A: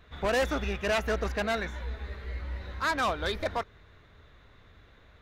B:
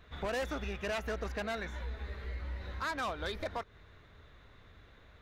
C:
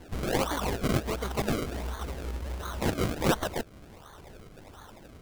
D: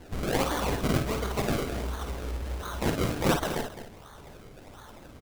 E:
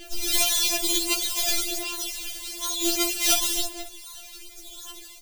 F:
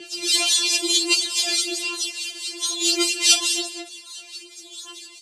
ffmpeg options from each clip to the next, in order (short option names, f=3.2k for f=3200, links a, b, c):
-af "acompressor=threshold=-35dB:ratio=2.5,volume=-1.5dB"
-af "highshelf=f=2.3k:t=q:w=3:g=11,acrusher=samples=34:mix=1:aa=0.000001:lfo=1:lforange=34:lforate=1.4,volume=4dB"
-af "aecho=1:1:50|57|212|271:0.422|0.266|0.282|0.15"
-af "aphaser=in_gain=1:out_gain=1:delay=3.2:decay=0.62:speed=0.53:type=sinusoidal,aexciter=amount=4.8:drive=9.3:freq=2.3k,afftfilt=real='re*4*eq(mod(b,16),0)':imag='im*4*eq(mod(b,16),0)':win_size=2048:overlap=0.75,volume=-4.5dB"
-filter_complex "[0:a]acrossover=split=2300[a][b];[a]aeval=exprs='val(0)*(1-0.7/2+0.7/2*cos(2*PI*4.7*n/s))':c=same[c];[b]aeval=exprs='val(0)*(1-0.7/2-0.7/2*cos(2*PI*4.7*n/s))':c=same[d];[c][d]amix=inputs=2:normalize=0,highpass=f=150:w=0.5412,highpass=f=150:w=1.3066,equalizer=f=410:t=q:w=4:g=9,equalizer=f=740:t=q:w=4:g=-6,equalizer=f=2.8k:t=q:w=4:g=7,equalizer=f=4.5k:t=q:w=4:g=9,equalizer=f=8k:t=q:w=4:g=5,lowpass=f=9.6k:w=0.5412,lowpass=f=9.6k:w=1.3066,volume=4dB"